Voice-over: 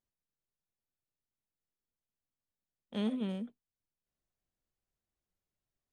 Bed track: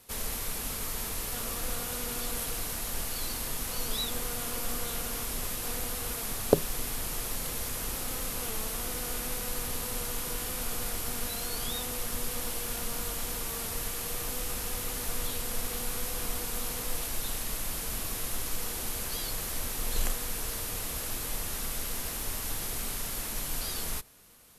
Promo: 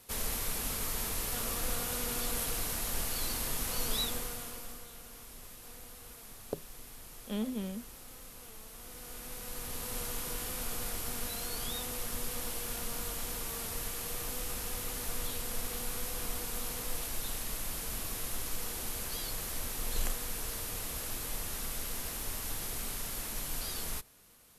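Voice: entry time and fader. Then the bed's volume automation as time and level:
4.35 s, -1.5 dB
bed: 4.02 s -0.5 dB
4.89 s -15.5 dB
8.67 s -15.5 dB
9.98 s -3.5 dB

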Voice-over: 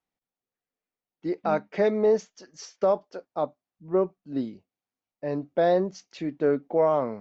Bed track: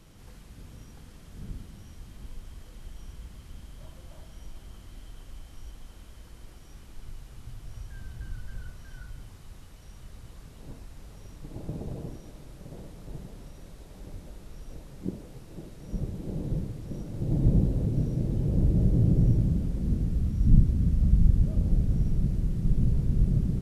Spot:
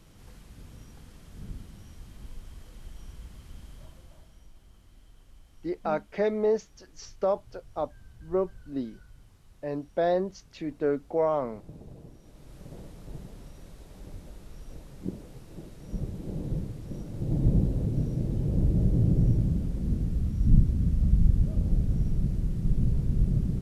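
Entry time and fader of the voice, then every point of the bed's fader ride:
4.40 s, -3.5 dB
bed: 3.73 s -1 dB
4.48 s -10 dB
12.14 s -10 dB
12.57 s -1 dB

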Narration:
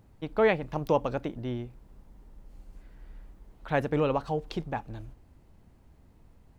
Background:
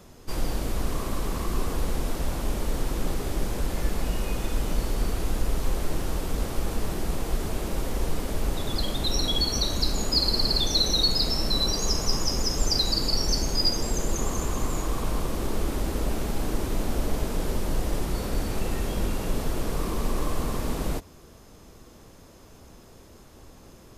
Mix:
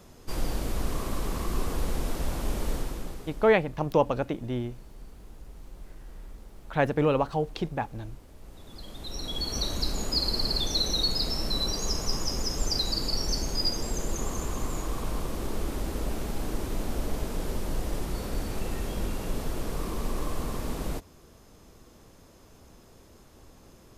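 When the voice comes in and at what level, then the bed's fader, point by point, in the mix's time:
3.05 s, +2.5 dB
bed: 2.72 s -2 dB
3.71 s -23.5 dB
8.35 s -23.5 dB
9.61 s -4 dB

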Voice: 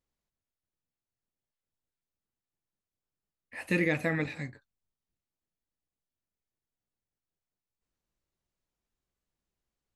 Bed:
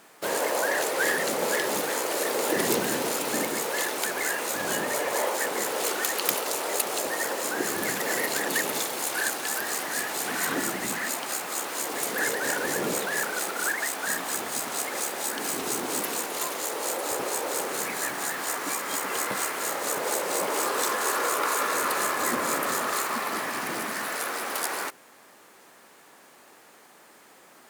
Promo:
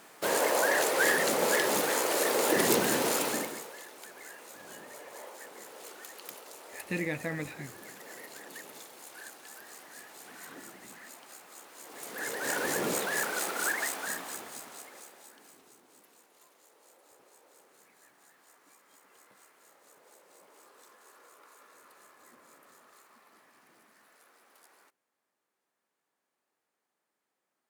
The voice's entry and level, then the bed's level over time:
3.20 s, -5.5 dB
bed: 3.23 s -0.5 dB
3.80 s -19.5 dB
11.76 s -19.5 dB
12.58 s -3 dB
13.82 s -3 dB
15.82 s -31.5 dB

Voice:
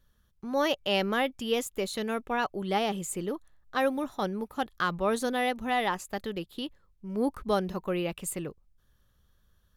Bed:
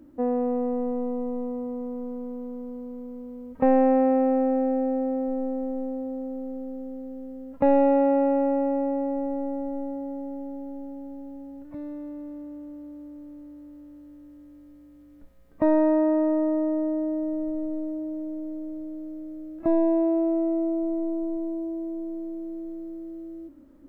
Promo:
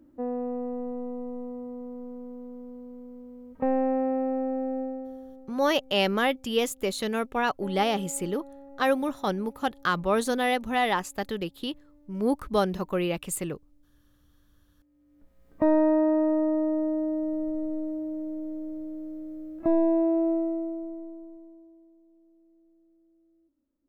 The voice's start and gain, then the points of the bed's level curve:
5.05 s, +3.0 dB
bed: 4.81 s -6 dB
5.53 s -23 dB
14.60 s -23 dB
15.50 s -1 dB
20.31 s -1 dB
22.01 s -27 dB

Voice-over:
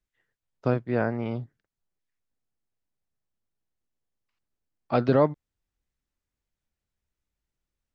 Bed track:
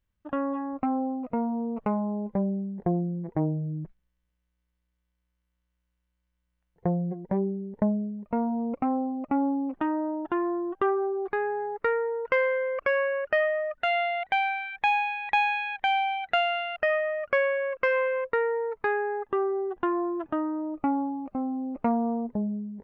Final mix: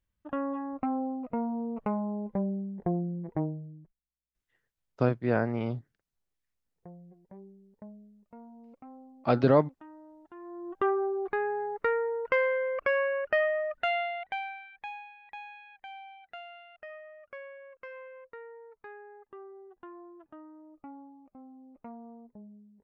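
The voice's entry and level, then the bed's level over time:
4.35 s, -1.0 dB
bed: 3.39 s -3.5 dB
3.97 s -22.5 dB
10.31 s -22.5 dB
10.84 s -2 dB
13.82 s -2 dB
15.14 s -20.5 dB

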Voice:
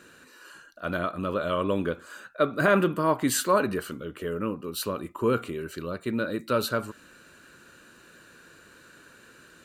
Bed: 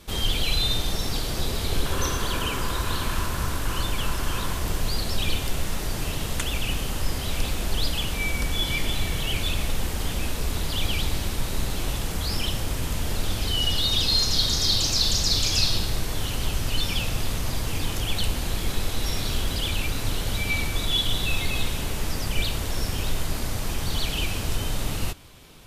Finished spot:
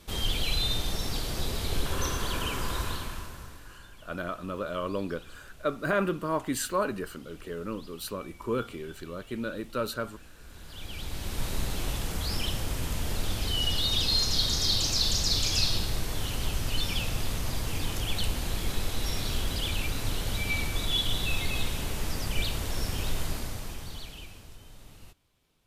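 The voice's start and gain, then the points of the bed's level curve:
3.25 s, -5.5 dB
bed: 2.82 s -4.5 dB
3.80 s -25 dB
10.35 s -25 dB
11.43 s -4 dB
23.27 s -4 dB
24.57 s -23 dB

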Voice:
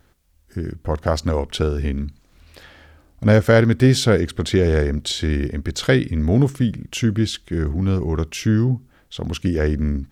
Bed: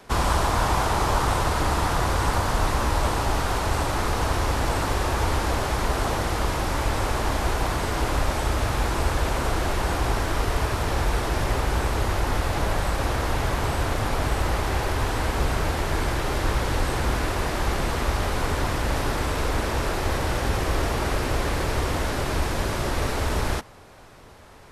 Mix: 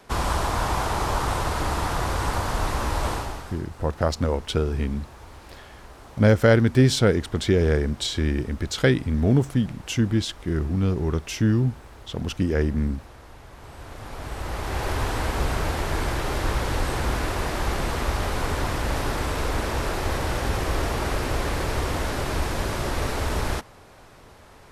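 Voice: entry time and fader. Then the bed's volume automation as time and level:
2.95 s, -3.0 dB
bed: 3.13 s -2.5 dB
3.65 s -21 dB
13.48 s -21 dB
14.90 s -1 dB

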